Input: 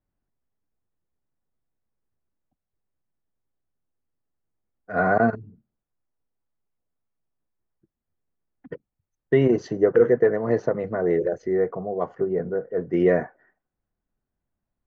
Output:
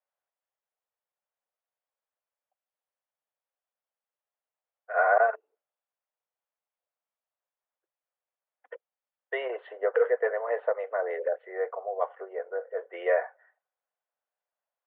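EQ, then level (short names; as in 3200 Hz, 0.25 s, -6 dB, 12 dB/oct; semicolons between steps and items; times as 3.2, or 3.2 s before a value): steep high-pass 510 Hz 48 dB/oct; steep low-pass 3600 Hz 96 dB/oct; air absorption 120 m; 0.0 dB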